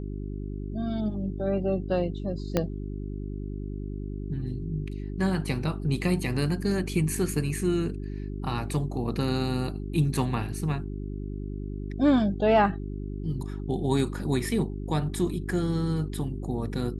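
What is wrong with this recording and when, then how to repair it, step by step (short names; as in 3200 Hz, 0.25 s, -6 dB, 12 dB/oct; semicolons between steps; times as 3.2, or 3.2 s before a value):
hum 50 Hz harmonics 8 -34 dBFS
2.57 pop -10 dBFS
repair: de-click; de-hum 50 Hz, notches 8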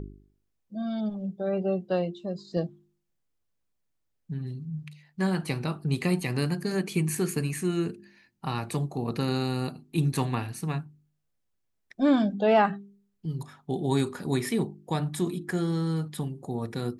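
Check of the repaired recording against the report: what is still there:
2.57 pop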